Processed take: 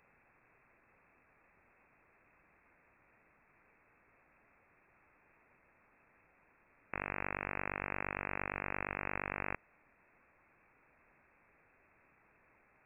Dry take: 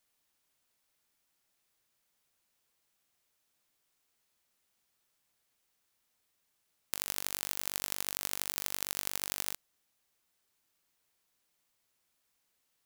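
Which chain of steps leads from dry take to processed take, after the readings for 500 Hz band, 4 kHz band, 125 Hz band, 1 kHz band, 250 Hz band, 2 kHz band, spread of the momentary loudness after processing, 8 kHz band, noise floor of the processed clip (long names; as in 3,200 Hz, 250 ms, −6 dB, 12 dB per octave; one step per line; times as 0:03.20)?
+6.5 dB, below −35 dB, +7.0 dB, +6.5 dB, +6.5 dB, +6.0 dB, 4 LU, below −40 dB, −70 dBFS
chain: sine wavefolder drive 11 dB, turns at −4 dBFS
voice inversion scrambler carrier 2,600 Hz
level +3 dB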